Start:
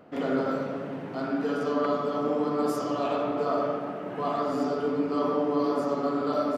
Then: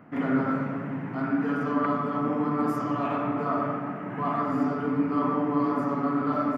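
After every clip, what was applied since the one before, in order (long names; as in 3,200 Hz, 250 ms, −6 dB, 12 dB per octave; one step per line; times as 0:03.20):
octave-band graphic EQ 125/250/500/1,000/2,000/4,000/8,000 Hz +11/+7/−6/+6/+10/−10/−5 dB
level −3.5 dB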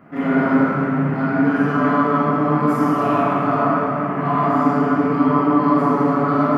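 dense smooth reverb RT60 2.7 s, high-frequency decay 0.7×, DRR −8 dB
level +1.5 dB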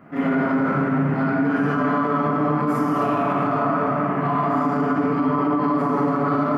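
brickwall limiter −12.5 dBFS, peak gain reduction 8.5 dB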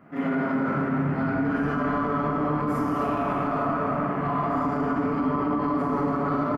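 echo with shifted repeats 292 ms, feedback 61%, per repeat −40 Hz, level −12 dB
level −5 dB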